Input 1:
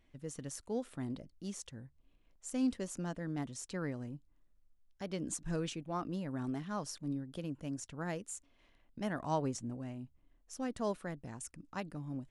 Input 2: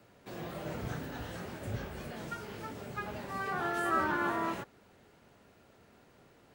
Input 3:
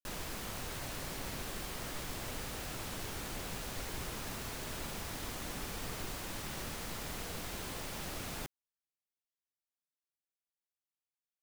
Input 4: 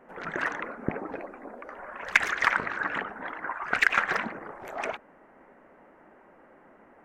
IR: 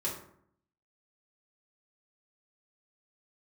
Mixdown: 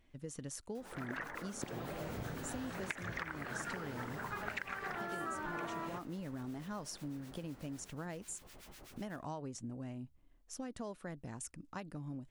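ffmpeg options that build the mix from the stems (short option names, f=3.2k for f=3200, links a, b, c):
-filter_complex "[0:a]acompressor=threshold=-40dB:ratio=6,volume=1dB,asplit=2[a][b];[1:a]adelay=1350,volume=-2.5dB[c];[2:a]acrossover=split=1200[d][e];[d]aeval=exprs='val(0)*(1-1/2+1/2*cos(2*PI*8*n/s))':c=same[f];[e]aeval=exprs='val(0)*(1-1/2-1/2*cos(2*PI*8*n/s))':c=same[g];[f][g]amix=inputs=2:normalize=0,adelay=700,volume=-10.5dB,asplit=2[h][i];[i]volume=-17dB[j];[3:a]adelay=750,volume=-10dB[k];[b]apad=whole_len=534522[l];[h][l]sidechaincompress=threshold=-47dB:ratio=8:attack=5.3:release=249[m];[4:a]atrim=start_sample=2205[n];[j][n]afir=irnorm=-1:irlink=0[o];[a][c][m][k][o]amix=inputs=5:normalize=0,acompressor=threshold=-37dB:ratio=12"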